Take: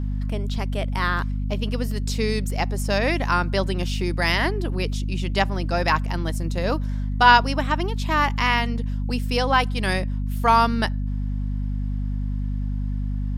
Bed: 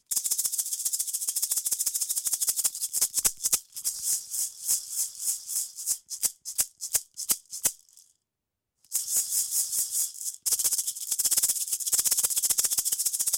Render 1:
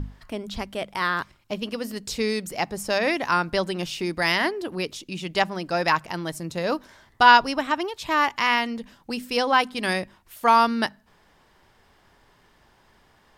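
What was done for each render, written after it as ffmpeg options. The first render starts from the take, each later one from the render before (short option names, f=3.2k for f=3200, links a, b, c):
-af "bandreject=f=50:t=h:w=6,bandreject=f=100:t=h:w=6,bandreject=f=150:t=h:w=6,bandreject=f=200:t=h:w=6,bandreject=f=250:t=h:w=6"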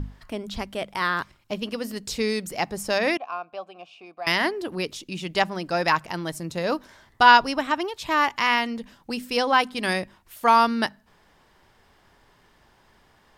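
-filter_complex "[0:a]asettb=1/sr,asplit=3[a][b][c];[a]atrim=end=3.174[d];[b]atrim=start=3.17:end=4.27,asetpts=PTS-STARTPTS,afade=t=in:d=0.004:c=qsin,afade=t=out:st=1.096:d=0.004:c=qsin,asplit=3[e][f][g];[e]bandpass=f=730:t=q:w=8,volume=0dB[h];[f]bandpass=f=1.09k:t=q:w=8,volume=-6dB[i];[g]bandpass=f=2.44k:t=q:w=8,volume=-9dB[j];[h][i][j]amix=inputs=3:normalize=0[k];[c]atrim=start=4.266[l];[d][k]acrossfade=d=0.004:c1=hsin:c2=qsin[m];[m][l]acrossfade=d=0.004:c1=qsin:c2=hsin"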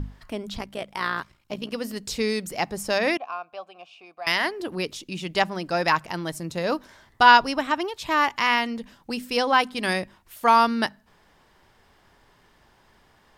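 -filter_complex "[0:a]asettb=1/sr,asplit=3[a][b][c];[a]atrim=end=0.574[d];[b]atrim=start=0.57:end=1.72,asetpts=PTS-STARTPTS,afade=t=in:d=0.004:c=qsin,afade=t=out:st=1.146:d=0.004:c=qsin,tremolo=f=59:d=0.621[e];[c]atrim=start=1.716[f];[d][e]acrossfade=d=0.004:c1=hsin:c2=qsin[g];[g][f]acrossfade=d=0.004:c1=qsin:c2=hsin,asettb=1/sr,asplit=3[h][i][j];[h]atrim=end=3.324[k];[i]atrim=start=3.32:end=4.6,asetpts=PTS-STARTPTS,afade=t=in:d=0.004:c=qsin,afade=t=out:st=1.276:d=0.004:c=qsin,equalizer=f=230:w=0.63:g=-7[l];[j]atrim=start=4.596[m];[k][l]acrossfade=d=0.004:c1=hsin:c2=qsin[n];[n][m]acrossfade=d=0.004:c1=qsin:c2=hsin"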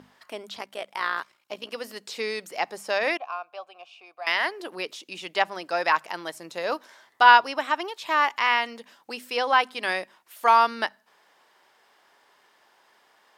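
-filter_complex "[0:a]highpass=500,acrossover=split=4100[a][b];[b]acompressor=threshold=-42dB:ratio=4:attack=1:release=60[c];[a][c]amix=inputs=2:normalize=0"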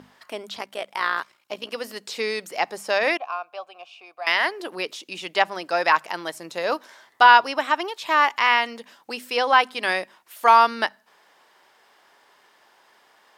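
-af "volume=3.5dB,alimiter=limit=-2dB:level=0:latency=1"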